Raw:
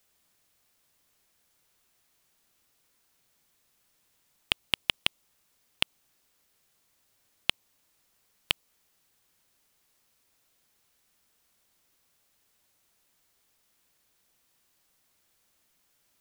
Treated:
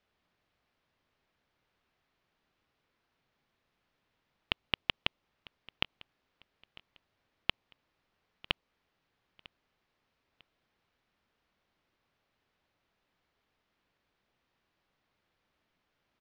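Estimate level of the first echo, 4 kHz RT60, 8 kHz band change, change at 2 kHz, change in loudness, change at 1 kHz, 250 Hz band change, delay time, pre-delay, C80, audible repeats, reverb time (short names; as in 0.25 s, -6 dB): -22.0 dB, none, under -25 dB, -4.0 dB, -5.0 dB, -1.5 dB, -0.5 dB, 0.949 s, none, none, 2, none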